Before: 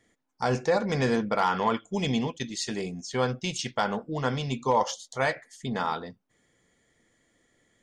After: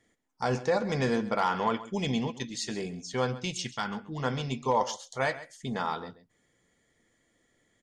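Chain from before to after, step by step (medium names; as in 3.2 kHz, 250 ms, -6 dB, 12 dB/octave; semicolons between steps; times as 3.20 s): 3.66–4.20 s: peaking EQ 560 Hz -13.5 dB 0.87 oct; delay 133 ms -16 dB; trim -2.5 dB; Vorbis 128 kbps 32 kHz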